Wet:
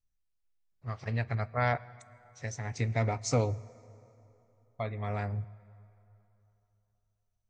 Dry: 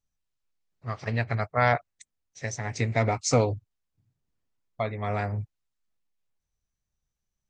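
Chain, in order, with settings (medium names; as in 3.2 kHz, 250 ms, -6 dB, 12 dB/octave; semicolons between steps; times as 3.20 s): bass shelf 92 Hz +10.5 dB; reverberation RT60 3.2 s, pre-delay 7 ms, DRR 19 dB; trim -7 dB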